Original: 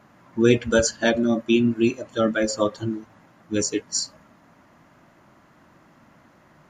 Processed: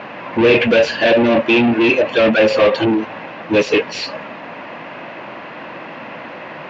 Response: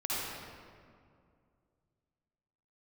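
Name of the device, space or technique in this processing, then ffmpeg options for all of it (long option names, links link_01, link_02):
overdrive pedal into a guitar cabinet: -filter_complex "[0:a]asplit=2[link_01][link_02];[link_02]highpass=frequency=720:poles=1,volume=37dB,asoftclip=type=tanh:threshold=-3.5dB[link_03];[link_01][link_03]amix=inputs=2:normalize=0,lowpass=frequency=2400:poles=1,volume=-6dB,highpass=80,equalizer=frequency=500:width_type=q:width=4:gain=6,equalizer=frequency=1300:width_type=q:width=4:gain=-6,equalizer=frequency=2600:width_type=q:width=4:gain=9,lowpass=frequency=4300:width=0.5412,lowpass=frequency=4300:width=1.3066,volume=-3dB"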